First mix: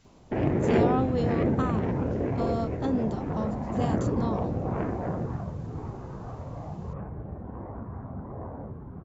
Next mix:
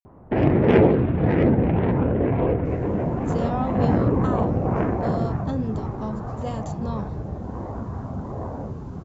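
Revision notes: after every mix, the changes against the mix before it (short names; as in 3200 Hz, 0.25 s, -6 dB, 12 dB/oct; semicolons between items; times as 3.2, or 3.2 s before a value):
speech: entry +2.65 s; background +7.0 dB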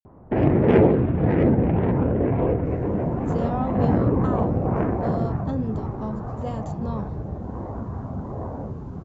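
master: add high shelf 2300 Hz -7.5 dB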